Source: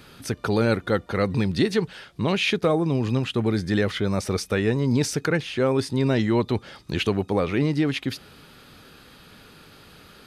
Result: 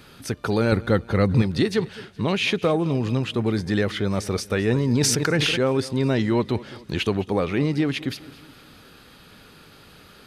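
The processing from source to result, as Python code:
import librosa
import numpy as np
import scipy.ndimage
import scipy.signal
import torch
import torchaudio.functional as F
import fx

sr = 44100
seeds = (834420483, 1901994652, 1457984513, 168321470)

y = fx.low_shelf(x, sr, hz=200.0, db=9.5, at=(0.72, 1.42))
y = fx.echo_feedback(y, sr, ms=210, feedback_pct=46, wet_db=-19)
y = fx.sustainer(y, sr, db_per_s=21.0, at=(4.65, 5.64))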